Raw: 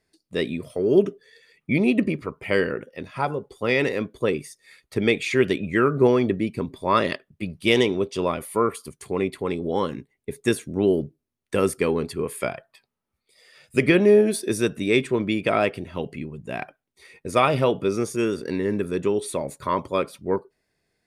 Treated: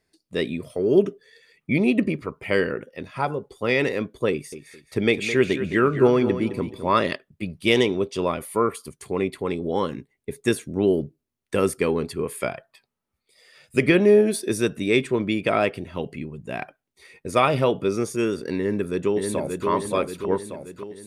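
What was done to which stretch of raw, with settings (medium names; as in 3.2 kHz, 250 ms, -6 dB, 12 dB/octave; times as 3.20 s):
4.31–6.98 s: feedback delay 213 ms, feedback 29%, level -11 dB
18.58–19.67 s: echo throw 580 ms, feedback 55%, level -4 dB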